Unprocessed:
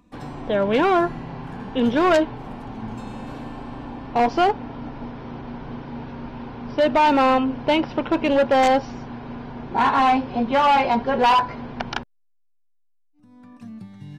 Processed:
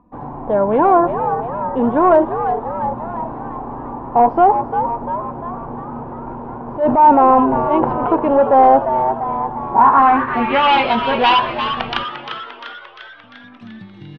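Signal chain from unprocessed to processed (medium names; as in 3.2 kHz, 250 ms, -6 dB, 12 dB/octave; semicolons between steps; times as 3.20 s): 6.11–8.07 s: transient shaper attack -10 dB, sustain +8 dB; frequency-shifting echo 348 ms, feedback 58%, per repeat +110 Hz, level -9 dB; low-pass sweep 940 Hz -> 3.3 kHz, 9.78–10.74 s; trim +2 dB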